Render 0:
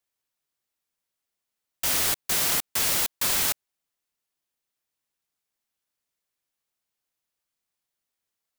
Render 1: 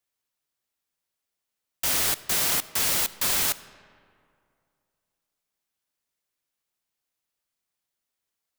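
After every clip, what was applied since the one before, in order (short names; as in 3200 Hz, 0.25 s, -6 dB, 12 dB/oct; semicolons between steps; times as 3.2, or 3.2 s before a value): digital reverb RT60 2.4 s, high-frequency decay 0.55×, pre-delay 15 ms, DRR 16.5 dB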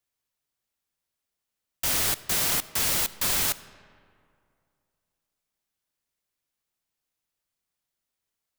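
low shelf 160 Hz +6 dB; gain -1 dB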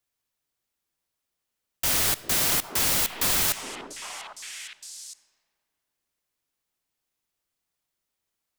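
delay with a stepping band-pass 0.403 s, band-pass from 350 Hz, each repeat 1.4 oct, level -2.5 dB; gain +1.5 dB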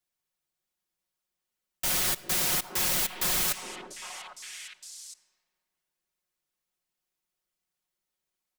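comb 5.5 ms; gain -5 dB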